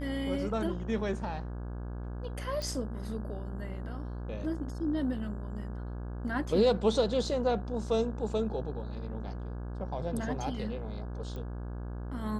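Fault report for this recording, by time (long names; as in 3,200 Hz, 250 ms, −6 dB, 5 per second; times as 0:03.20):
mains buzz 60 Hz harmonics 28 −38 dBFS
0:02.62: click
0:11.36: click −29 dBFS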